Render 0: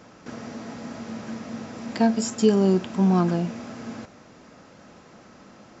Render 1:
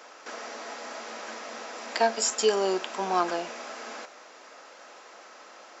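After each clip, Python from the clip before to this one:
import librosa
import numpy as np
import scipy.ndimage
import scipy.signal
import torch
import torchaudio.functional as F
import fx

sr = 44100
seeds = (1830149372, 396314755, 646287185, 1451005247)

y = scipy.signal.sosfilt(scipy.signal.bessel(4, 650.0, 'highpass', norm='mag', fs=sr, output='sos'), x)
y = F.gain(torch.from_numpy(y), 5.0).numpy()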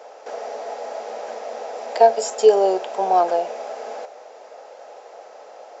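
y = fx.band_shelf(x, sr, hz=590.0, db=15.0, octaves=1.3)
y = F.gain(torch.from_numpy(y), -3.0).numpy()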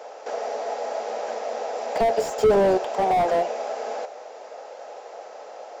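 y = fx.slew_limit(x, sr, full_power_hz=72.0)
y = F.gain(torch.from_numpy(y), 2.0).numpy()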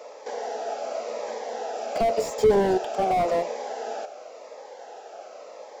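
y = fx.notch_cascade(x, sr, direction='falling', hz=0.91)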